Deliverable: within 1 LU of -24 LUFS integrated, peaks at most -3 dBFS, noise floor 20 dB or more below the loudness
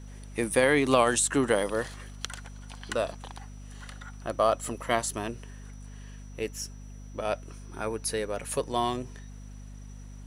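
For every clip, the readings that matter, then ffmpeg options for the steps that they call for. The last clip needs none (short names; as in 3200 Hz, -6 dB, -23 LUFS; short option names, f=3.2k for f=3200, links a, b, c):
hum 50 Hz; harmonics up to 250 Hz; hum level -41 dBFS; loudness -29.0 LUFS; peak -7.0 dBFS; loudness target -24.0 LUFS
-> -af "bandreject=f=50:t=h:w=6,bandreject=f=100:t=h:w=6,bandreject=f=150:t=h:w=6,bandreject=f=200:t=h:w=6,bandreject=f=250:t=h:w=6"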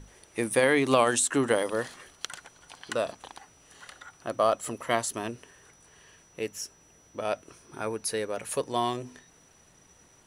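hum none; loudness -29.0 LUFS; peak -7.0 dBFS; loudness target -24.0 LUFS
-> -af "volume=5dB,alimiter=limit=-3dB:level=0:latency=1"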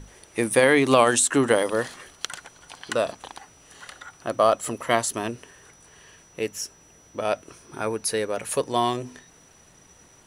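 loudness -24.0 LUFS; peak -3.0 dBFS; noise floor -54 dBFS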